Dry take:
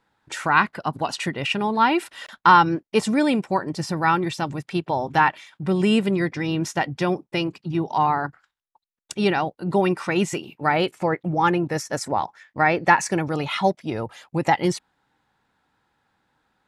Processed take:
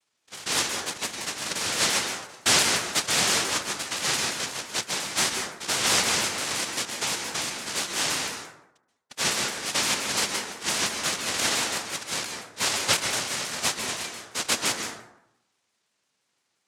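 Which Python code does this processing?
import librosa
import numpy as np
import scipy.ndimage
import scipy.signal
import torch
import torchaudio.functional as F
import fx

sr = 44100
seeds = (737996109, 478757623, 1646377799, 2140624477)

y = fx.octave_divider(x, sr, octaves=1, level_db=2.0)
y = fx.noise_vocoder(y, sr, seeds[0], bands=1)
y = fx.rev_plate(y, sr, seeds[1], rt60_s=0.84, hf_ratio=0.5, predelay_ms=120, drr_db=3.5)
y = fx.vibrato_shape(y, sr, shape='saw_down', rate_hz=5.8, depth_cents=160.0)
y = y * 10.0 ** (-7.5 / 20.0)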